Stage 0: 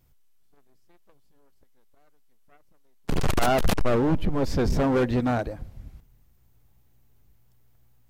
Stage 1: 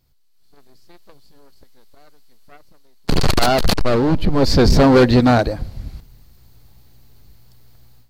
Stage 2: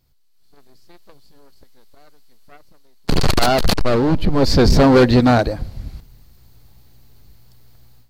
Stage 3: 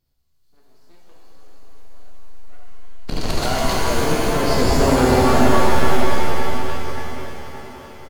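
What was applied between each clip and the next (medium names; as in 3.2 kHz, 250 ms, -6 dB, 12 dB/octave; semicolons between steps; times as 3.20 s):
peaking EQ 4.4 kHz +12 dB 0.41 oct; level rider gain up to 14 dB; trim -1 dB
no audible change
on a send: feedback delay 573 ms, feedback 52%, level -10 dB; on the sum: pitch-shifted reverb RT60 2.6 s, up +7 st, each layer -2 dB, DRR -3 dB; trim -10 dB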